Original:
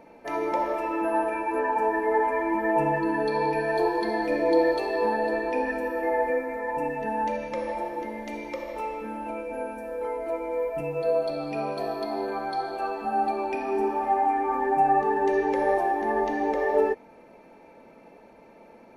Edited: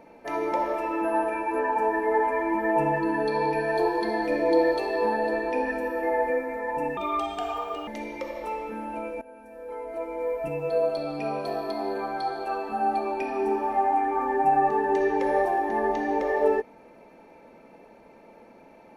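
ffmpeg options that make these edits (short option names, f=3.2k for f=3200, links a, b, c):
-filter_complex "[0:a]asplit=4[a][b][c][d];[a]atrim=end=6.974[e];[b]atrim=start=6.97:end=8.2,asetpts=PTS-STARTPTS,asetrate=59976,aresample=44100[f];[c]atrim=start=8.196:end=9.54,asetpts=PTS-STARTPTS,afade=t=out:st=1.34:d=0.004:c=hsin:silence=0.11885[g];[d]atrim=start=9.54,asetpts=PTS-STARTPTS,afade=t=in:d=1.17:silence=0.11885[h];[e][f]acrossfade=d=0.004:c1=hsin:c2=hsin[i];[g][h]concat=n=2:v=0:a=1[j];[i][j]acrossfade=d=0.004:c1=hsin:c2=hsin"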